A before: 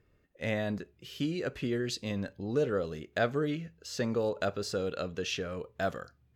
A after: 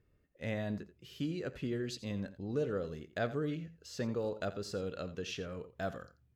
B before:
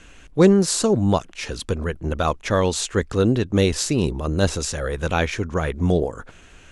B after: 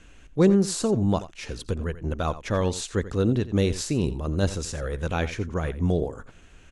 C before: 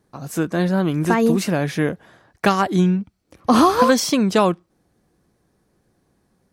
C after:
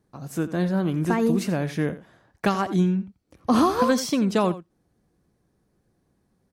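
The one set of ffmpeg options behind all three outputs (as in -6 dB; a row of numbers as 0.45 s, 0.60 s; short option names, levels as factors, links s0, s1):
-af "lowshelf=f=350:g=5,aecho=1:1:86:0.178,volume=0.422"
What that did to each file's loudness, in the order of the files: -5.0 LU, -4.5 LU, -5.0 LU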